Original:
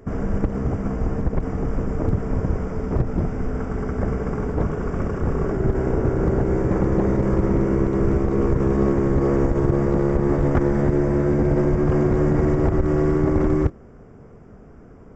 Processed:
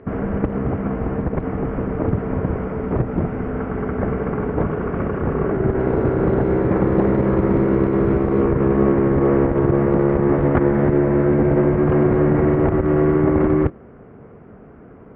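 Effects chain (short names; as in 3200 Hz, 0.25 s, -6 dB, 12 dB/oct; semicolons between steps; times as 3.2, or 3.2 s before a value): HPF 130 Hz 6 dB/oct; 5.79–8.41 short-mantissa float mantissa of 4-bit; LPF 2900 Hz 24 dB/oct; gain +4.5 dB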